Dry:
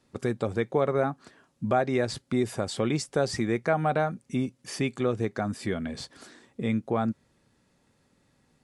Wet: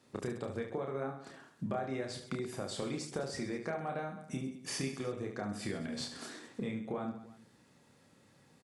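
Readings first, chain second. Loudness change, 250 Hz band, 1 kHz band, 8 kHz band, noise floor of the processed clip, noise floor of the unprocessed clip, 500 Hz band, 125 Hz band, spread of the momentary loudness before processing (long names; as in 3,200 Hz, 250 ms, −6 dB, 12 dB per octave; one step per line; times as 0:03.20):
−11.0 dB, −10.0 dB, −12.0 dB, −4.5 dB, −65 dBFS, −69 dBFS, −11.5 dB, −11.0 dB, 9 LU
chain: high-pass filter 100 Hz
downward compressor 6 to 1, threshold −38 dBFS, peak gain reduction 17.5 dB
on a send: reverse bouncing-ball delay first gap 30 ms, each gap 1.4×, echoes 5
on the sum: level +1 dB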